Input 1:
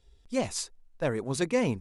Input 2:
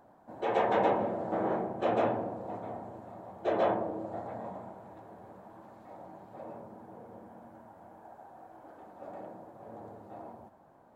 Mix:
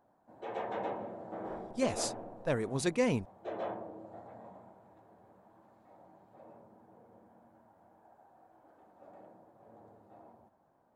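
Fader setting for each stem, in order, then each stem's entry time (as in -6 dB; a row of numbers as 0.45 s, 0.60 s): -3.0 dB, -10.5 dB; 1.45 s, 0.00 s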